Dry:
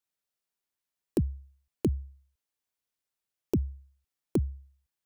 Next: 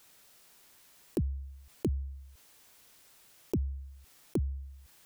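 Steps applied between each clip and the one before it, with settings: fast leveller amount 50%; gain -5 dB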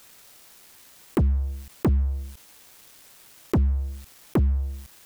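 sample leveller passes 3; gain +4.5 dB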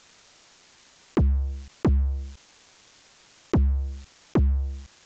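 downsampling 16000 Hz

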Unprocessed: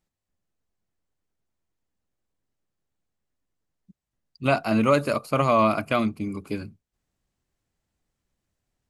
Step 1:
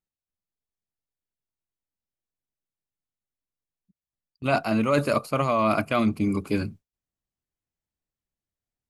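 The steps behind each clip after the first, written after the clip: gate with hold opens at -37 dBFS; reverse; compressor, threshold -27 dBFS, peak gain reduction 12 dB; reverse; gain +7.5 dB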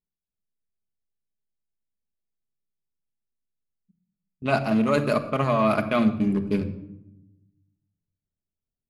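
Wiener smoothing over 41 samples; shoebox room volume 3400 m³, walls furnished, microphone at 1.4 m; low-pass opened by the level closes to 2400 Hz, open at -21 dBFS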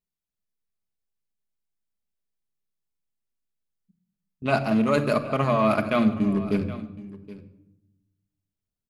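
echo 0.771 s -17 dB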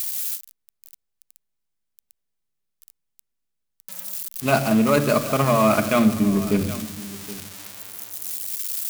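switching spikes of -22 dBFS; gain +3.5 dB

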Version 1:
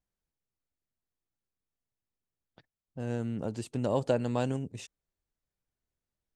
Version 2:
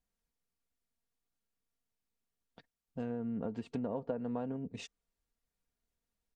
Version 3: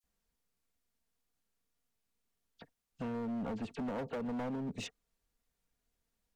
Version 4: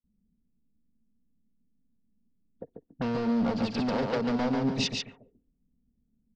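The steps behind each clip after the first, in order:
treble ducked by the level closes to 1300 Hz, closed at -29 dBFS; compressor 6:1, threshold -34 dBFS, peak gain reduction 11.5 dB; comb 4.3 ms, depth 51%
wow and flutter 29 cents; dispersion lows, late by 40 ms, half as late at 2500 Hz; hard clip -39 dBFS, distortion -8 dB; gain +4 dB
feedback echo 0.142 s, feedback 28%, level -3.5 dB; envelope low-pass 210–4900 Hz up, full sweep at -40 dBFS; gain +8.5 dB

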